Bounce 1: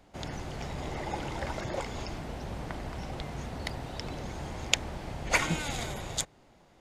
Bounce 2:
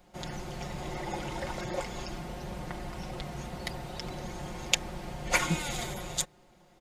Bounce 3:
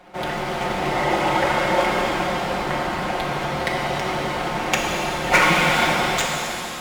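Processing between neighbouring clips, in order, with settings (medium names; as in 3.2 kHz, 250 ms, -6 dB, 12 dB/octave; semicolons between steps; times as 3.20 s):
treble shelf 11 kHz +9 dB; band-stop 1.7 kHz, Q 29; comb 5.6 ms; trim -2 dB
median filter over 9 samples; overdrive pedal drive 19 dB, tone 4.4 kHz, clips at -8.5 dBFS; pitch-shifted reverb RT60 3 s, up +7 st, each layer -8 dB, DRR -1.5 dB; trim +4 dB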